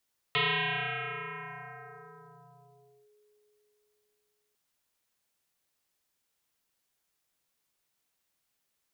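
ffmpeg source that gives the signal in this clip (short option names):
-f lavfi -i "aevalsrc='0.0668*pow(10,-3*t/4.27)*sin(2*PI*420*t+11*clip(1-t/2.73,0,1)*sin(2*PI*0.69*420*t))':d=4.2:s=44100"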